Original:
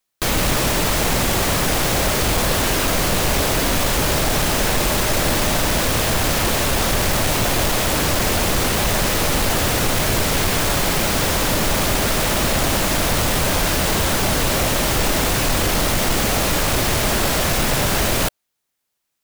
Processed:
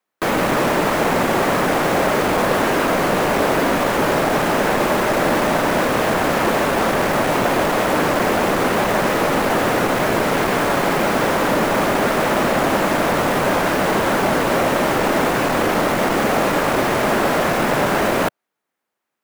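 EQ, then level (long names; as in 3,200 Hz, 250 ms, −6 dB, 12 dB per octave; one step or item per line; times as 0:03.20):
three-way crossover with the lows and the highs turned down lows −20 dB, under 170 Hz, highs −15 dB, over 2,100 Hz
+5.5 dB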